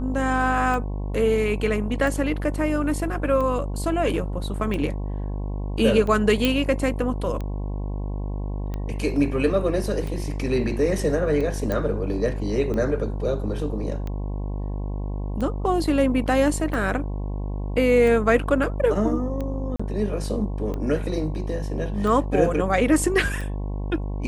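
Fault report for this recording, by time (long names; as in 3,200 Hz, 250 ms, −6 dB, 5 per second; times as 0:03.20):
mains buzz 50 Hz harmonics 22 −28 dBFS
scratch tick 45 rpm
0:06.45: click −7 dBFS
0:11.72: click −13 dBFS
0:19.76–0:19.80: drop-out 35 ms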